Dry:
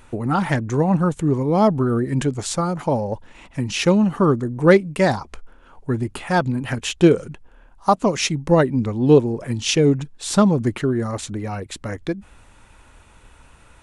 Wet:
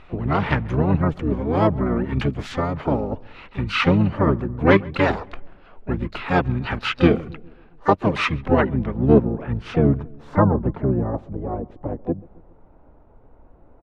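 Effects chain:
low-pass filter sweep 2,700 Hz → 660 Hz, 0:08.01–0:11.41
feedback echo with a low-pass in the loop 136 ms, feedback 55%, low-pass 2,000 Hz, level −22.5 dB
pitch-shifted copies added −12 semitones −1 dB, −4 semitones −6 dB, +7 semitones −11 dB
level −5 dB

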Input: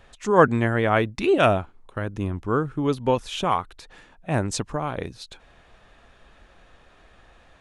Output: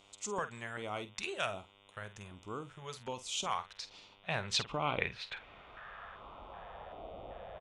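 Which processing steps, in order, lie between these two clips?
RIAA equalisation playback
downward compressor, threshold −15 dBFS, peak gain reduction 9 dB
band-pass filter sweep 7,600 Hz → 620 Hz, 0:03.30–0:07.18
hum with harmonics 100 Hz, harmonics 37, −76 dBFS 0 dB per octave
auto-filter notch square 1.3 Hz 290–1,700 Hz
double-tracking delay 48 ms −13 dB
level +13.5 dB

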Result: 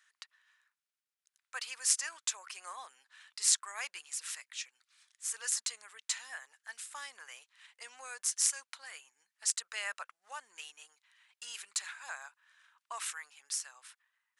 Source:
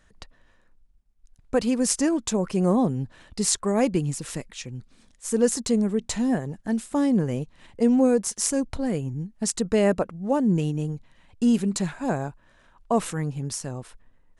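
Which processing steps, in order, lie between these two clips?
high-pass filter 1,300 Hz 24 dB per octave
level −3 dB

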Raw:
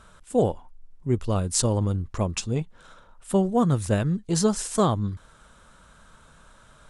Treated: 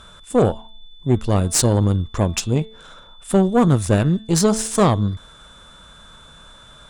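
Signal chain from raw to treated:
steady tone 3,500 Hz −53 dBFS
hum removal 220.6 Hz, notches 19
tube saturation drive 16 dB, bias 0.55
level +9 dB

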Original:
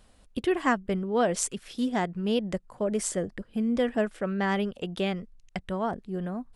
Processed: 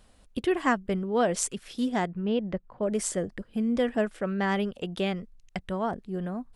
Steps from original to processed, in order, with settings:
0:02.07–0:02.83: high-frequency loss of the air 300 metres

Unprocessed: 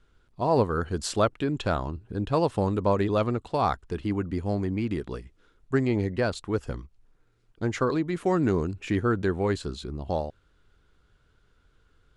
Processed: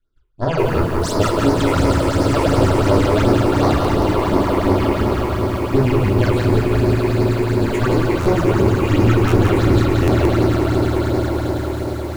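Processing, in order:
mains-hum notches 50/100/150/200/250/300 Hz
noise gate −57 dBFS, range −17 dB
in parallel at −2 dB: output level in coarse steps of 9 dB
on the sum: echo that builds up and dies away 105 ms, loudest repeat 8, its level −9 dB
harmonic generator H 8 −16 dB, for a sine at −4 dBFS
convolution reverb RT60 0.60 s, pre-delay 3 ms, DRR −2 dB
all-pass phaser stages 8, 2.8 Hz, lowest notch 180–2,800 Hz
buffer that repeats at 0:03.79/0:08.20/0:09.27/0:10.02, samples 512, times 4
feedback echo at a low word length 174 ms, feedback 35%, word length 6 bits, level −4 dB
level −2 dB

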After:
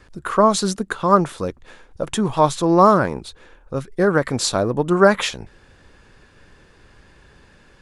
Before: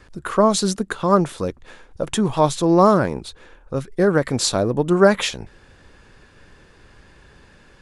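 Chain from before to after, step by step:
dynamic equaliser 1,200 Hz, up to +5 dB, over −31 dBFS, Q 1.1
level −1 dB

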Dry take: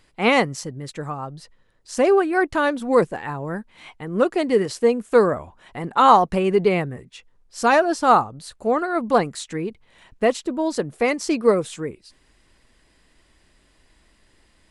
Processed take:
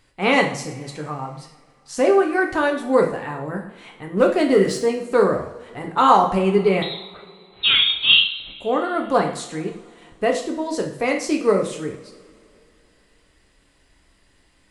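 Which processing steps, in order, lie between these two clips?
0:04.17–0:04.83: leveller curve on the samples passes 1
0:06.82–0:08.55: voice inversion scrambler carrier 4,000 Hz
coupled-rooms reverb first 0.54 s, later 2.8 s, from −21 dB, DRR 1.5 dB
level −2 dB

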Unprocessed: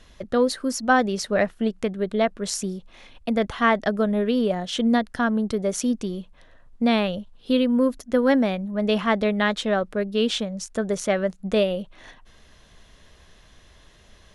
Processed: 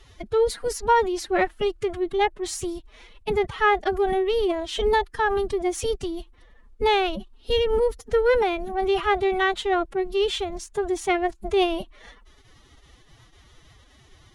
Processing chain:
dynamic equaliser 5,500 Hz, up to −5 dB, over −47 dBFS, Q 2
phase-vocoder pitch shift with formants kept +10.5 semitones

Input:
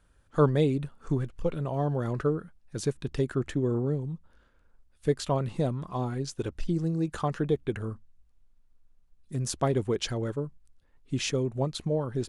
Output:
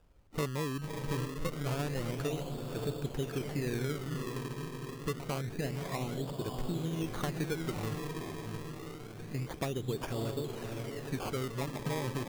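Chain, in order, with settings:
downsampling to 11,025 Hz
downward compressor 3 to 1, threshold −35 dBFS, peak gain reduction 14 dB
on a send: feedback delay with all-pass diffusion 590 ms, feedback 61%, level −4 dB
on the sum: sample-and-hold swept by an LFO 21×, swing 100% 0.27 Hz

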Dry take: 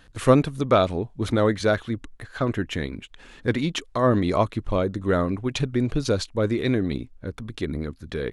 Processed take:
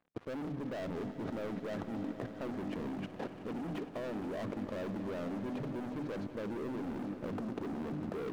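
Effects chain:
Chebyshev band-pass filter 200–730 Hz, order 2
mains-hum notches 50/100/150/200/250/300 Hz
reversed playback
downward compressor 10 to 1, threshold −36 dBFS, peak gain reduction 24 dB
reversed playback
leveller curve on the samples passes 5
output level in coarse steps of 21 dB
on a send: echo that builds up and dies away 93 ms, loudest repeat 5, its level −16.5 dB
on the sum: level +3 dB

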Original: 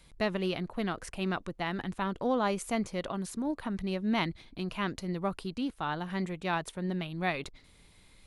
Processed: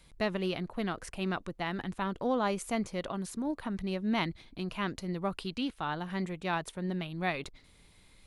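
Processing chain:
0:05.31–0:05.81: dynamic equaliser 2,900 Hz, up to +7 dB, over −57 dBFS, Q 0.71
level −1 dB

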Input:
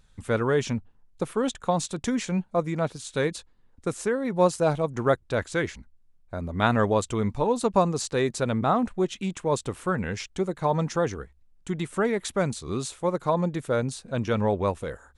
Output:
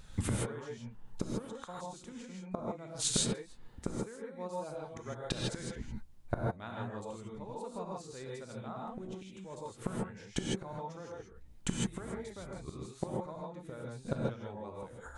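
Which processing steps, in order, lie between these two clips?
0:11.19–0:12.58: sub-octave generator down 2 octaves, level −1 dB
gate with flip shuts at −26 dBFS, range −30 dB
reverb whose tail is shaped and stops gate 180 ms rising, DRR −2.5 dB
level +6.5 dB

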